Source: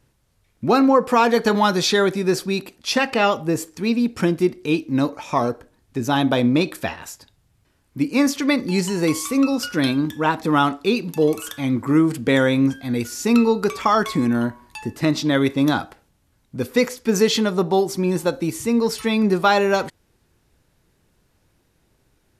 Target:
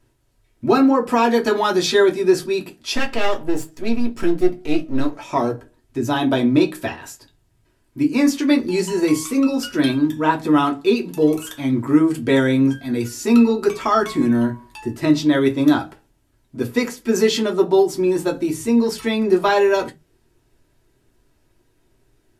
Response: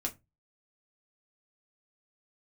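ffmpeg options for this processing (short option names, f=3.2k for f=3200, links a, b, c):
-filter_complex "[0:a]asettb=1/sr,asplit=3[a][b][c];[a]atrim=end=2.954[d];[b]atrim=start=2.95:end=5.18,asetpts=PTS-STARTPTS,afade=t=in:d=0.004:c=qsin,afade=t=out:st=2.226:d=0.004:c=qsin,aeval=exprs='if(lt(val(0),0),0.251*val(0),val(0))':c=same[e];[c]atrim=start=5.176[f];[d][e]acrossfade=d=0.004:c1=hsin:c2=qsin[g];[g][f]acrossfade=d=0.004:c1=qsin:c2=hsin[h];[1:a]atrim=start_sample=2205,asetrate=57330,aresample=44100[i];[h][i]afir=irnorm=-1:irlink=0"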